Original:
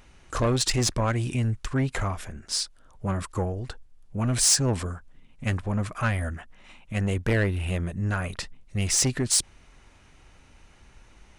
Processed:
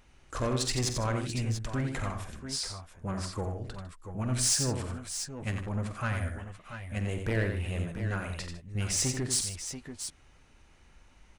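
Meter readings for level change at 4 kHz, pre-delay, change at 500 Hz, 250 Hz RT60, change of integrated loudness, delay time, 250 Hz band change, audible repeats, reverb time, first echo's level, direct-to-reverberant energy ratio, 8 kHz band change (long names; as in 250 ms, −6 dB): −5.5 dB, no reverb audible, −5.5 dB, no reverb audible, −6.0 dB, 47 ms, −5.5 dB, 4, no reverb audible, −12.0 dB, no reverb audible, −5.5 dB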